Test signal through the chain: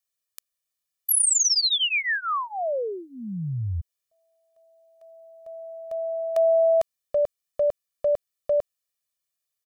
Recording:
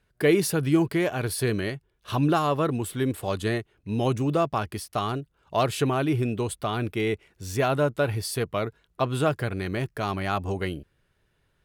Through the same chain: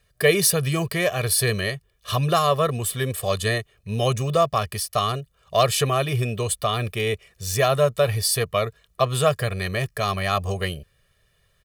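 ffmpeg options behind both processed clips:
-af "highshelf=f=2.6k:g=9,aecho=1:1:1.7:0.92"

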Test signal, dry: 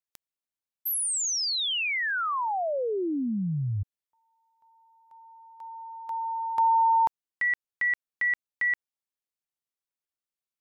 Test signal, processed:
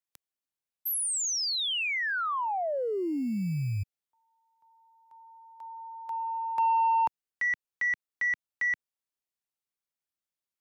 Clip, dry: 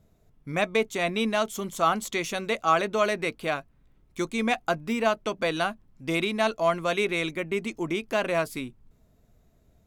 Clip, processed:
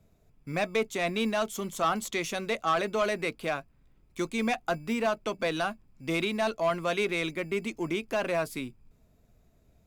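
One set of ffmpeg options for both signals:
-filter_complex "[0:a]acrossover=split=180[a][b];[a]acrusher=samples=18:mix=1:aa=0.000001[c];[b]asoftclip=type=tanh:threshold=-17dB[d];[c][d]amix=inputs=2:normalize=0,volume=-1.5dB"

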